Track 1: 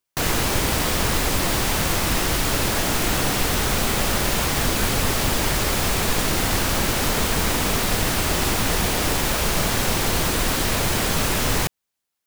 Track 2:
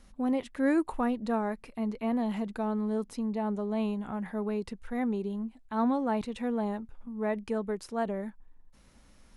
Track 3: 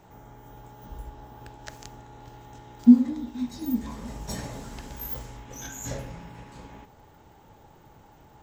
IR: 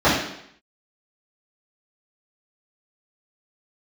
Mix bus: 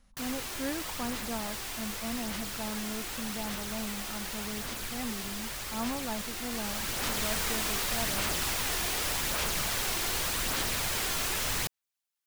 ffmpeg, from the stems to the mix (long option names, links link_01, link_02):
-filter_complex "[0:a]tiltshelf=frequency=810:gain=-5,aphaser=in_gain=1:out_gain=1:delay=2.9:decay=0.31:speed=0.85:type=sinusoidal,volume=-12dB,afade=type=in:start_time=6.48:duration=0.79:silence=0.446684[link_01];[1:a]equalizer=frequency=370:width_type=o:width=0.37:gain=-12.5,volume=-6.5dB[link_02];[link_01][link_02]amix=inputs=2:normalize=0"